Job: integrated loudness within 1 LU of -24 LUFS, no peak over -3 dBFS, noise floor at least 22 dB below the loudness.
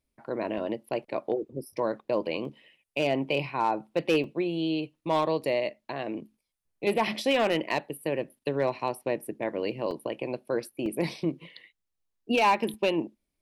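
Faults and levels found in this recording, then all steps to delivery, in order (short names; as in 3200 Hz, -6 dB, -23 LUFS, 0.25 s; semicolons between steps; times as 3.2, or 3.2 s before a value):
clipped 0.3%; flat tops at -17.0 dBFS; dropouts 6; longest dropout 2.5 ms; loudness -29.5 LUFS; peak -17.0 dBFS; loudness target -24.0 LUFS
-> clip repair -17 dBFS; interpolate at 0.58/2.45/4.24/9.91/10.86/12.74, 2.5 ms; gain +5.5 dB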